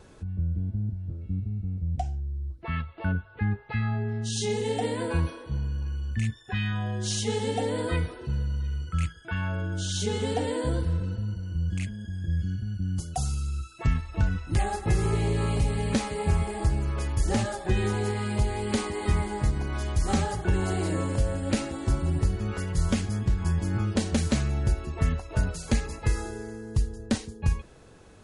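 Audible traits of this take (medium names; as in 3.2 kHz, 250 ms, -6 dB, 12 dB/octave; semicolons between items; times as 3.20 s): noise floor -50 dBFS; spectral tilt -6.0 dB/octave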